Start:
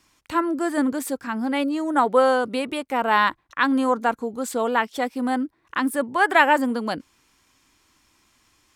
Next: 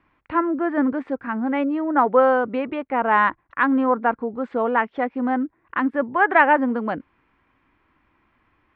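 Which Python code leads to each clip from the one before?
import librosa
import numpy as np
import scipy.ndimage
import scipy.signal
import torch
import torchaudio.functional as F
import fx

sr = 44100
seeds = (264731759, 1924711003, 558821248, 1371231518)

y = scipy.signal.sosfilt(scipy.signal.butter(4, 2200.0, 'lowpass', fs=sr, output='sos'), x)
y = y * librosa.db_to_amplitude(1.5)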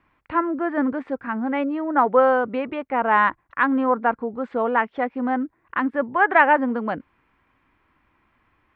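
y = fx.peak_eq(x, sr, hz=310.0, db=-2.5, octaves=0.77)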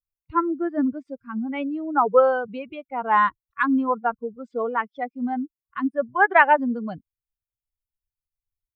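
y = fx.bin_expand(x, sr, power=2.0)
y = y * librosa.db_to_amplitude(2.5)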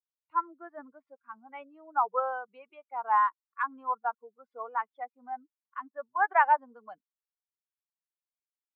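y = fx.ladder_bandpass(x, sr, hz=1100.0, resonance_pct=40)
y = y * librosa.db_to_amplitude(2.0)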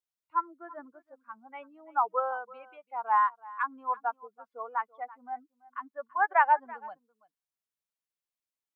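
y = x + 10.0 ** (-20.5 / 20.0) * np.pad(x, (int(334 * sr / 1000.0), 0))[:len(x)]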